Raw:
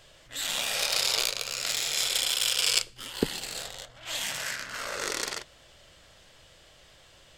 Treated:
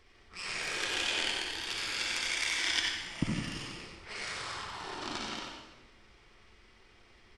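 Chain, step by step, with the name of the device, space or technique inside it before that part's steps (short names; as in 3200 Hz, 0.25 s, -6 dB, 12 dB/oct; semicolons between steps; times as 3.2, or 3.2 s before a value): monster voice (pitch shift -7 st; low shelf 120 Hz +6.5 dB; echo 91 ms -7 dB; reverb RT60 1.2 s, pre-delay 50 ms, DRR 0 dB); gain -8.5 dB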